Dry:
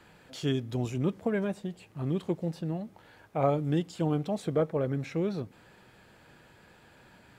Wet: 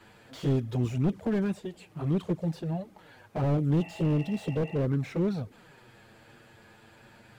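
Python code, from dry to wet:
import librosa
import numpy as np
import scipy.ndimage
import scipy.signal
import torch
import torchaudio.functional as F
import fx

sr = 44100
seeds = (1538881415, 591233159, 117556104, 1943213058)

y = fx.env_flanger(x, sr, rest_ms=9.9, full_db=-23.0)
y = fx.spec_repair(y, sr, seeds[0], start_s=3.82, length_s=0.98, low_hz=570.0, high_hz=2800.0, source='before')
y = fx.slew_limit(y, sr, full_power_hz=12.0)
y = F.gain(torch.from_numpy(y), 5.0).numpy()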